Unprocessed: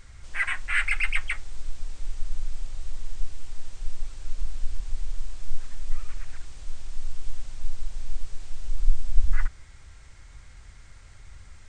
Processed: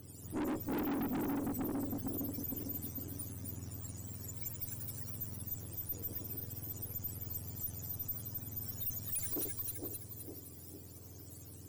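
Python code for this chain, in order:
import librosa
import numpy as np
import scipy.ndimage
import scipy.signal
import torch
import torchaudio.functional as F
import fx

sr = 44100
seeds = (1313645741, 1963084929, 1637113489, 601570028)

y = fx.octave_mirror(x, sr, pivot_hz=770.0)
y = fx.echo_split(y, sr, split_hz=1000.0, low_ms=457, high_ms=259, feedback_pct=52, wet_db=-6.5)
y = fx.tube_stage(y, sr, drive_db=36.0, bias=0.6)
y = F.gain(torch.from_numpy(y), 2.0).numpy()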